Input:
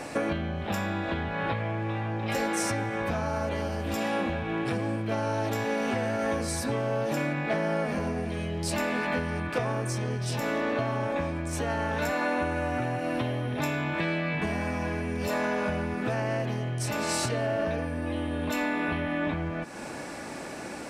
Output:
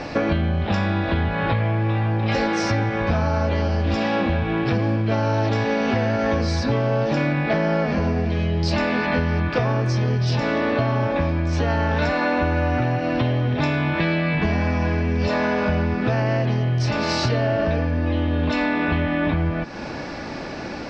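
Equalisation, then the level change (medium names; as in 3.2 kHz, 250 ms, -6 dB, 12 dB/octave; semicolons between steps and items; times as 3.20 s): resonant low-pass 5.1 kHz, resonance Q 2.7; distance through air 160 m; bass shelf 100 Hz +11.5 dB; +6.5 dB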